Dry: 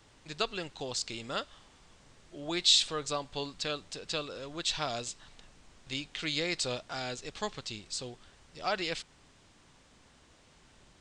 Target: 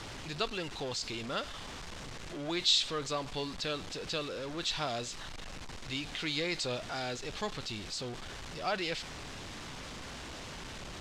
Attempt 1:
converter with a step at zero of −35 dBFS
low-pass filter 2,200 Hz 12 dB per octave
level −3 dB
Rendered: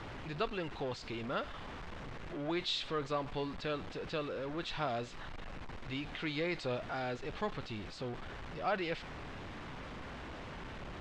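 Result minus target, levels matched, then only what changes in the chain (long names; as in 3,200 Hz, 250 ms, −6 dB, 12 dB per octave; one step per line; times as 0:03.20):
8,000 Hz band −12.5 dB
change: low-pass filter 6,200 Hz 12 dB per octave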